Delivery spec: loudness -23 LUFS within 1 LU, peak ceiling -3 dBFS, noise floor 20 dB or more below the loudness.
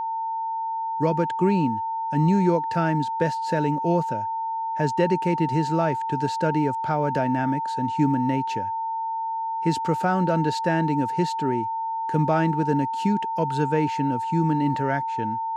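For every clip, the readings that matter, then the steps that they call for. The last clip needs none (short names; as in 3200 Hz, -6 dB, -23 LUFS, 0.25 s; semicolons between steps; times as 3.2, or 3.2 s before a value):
steady tone 900 Hz; tone level -25 dBFS; loudness -24.0 LUFS; peak -8.5 dBFS; loudness target -23.0 LUFS
-> notch 900 Hz, Q 30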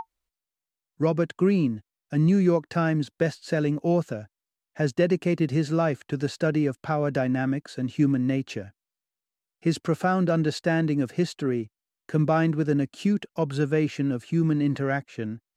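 steady tone none; loudness -25.5 LUFS; peak -10.0 dBFS; loudness target -23.0 LUFS
-> gain +2.5 dB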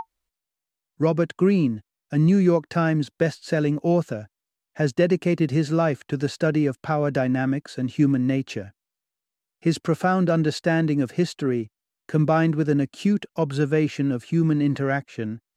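loudness -23.0 LUFS; peak -7.5 dBFS; noise floor -87 dBFS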